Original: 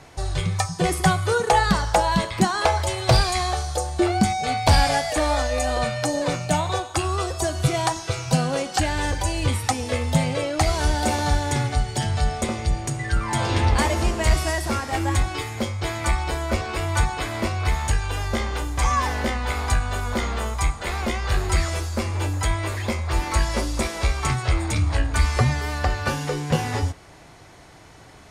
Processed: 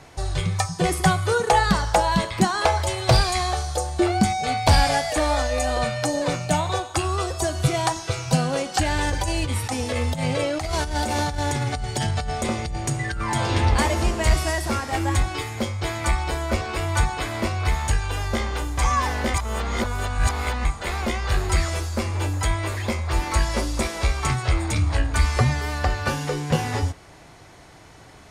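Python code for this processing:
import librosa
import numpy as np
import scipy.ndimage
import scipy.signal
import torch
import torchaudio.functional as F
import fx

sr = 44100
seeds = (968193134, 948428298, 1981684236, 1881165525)

y = fx.over_compress(x, sr, threshold_db=-24.0, ratio=-1.0, at=(8.83, 13.36))
y = fx.edit(y, sr, fx.reverse_span(start_s=19.34, length_s=1.31), tone=tone)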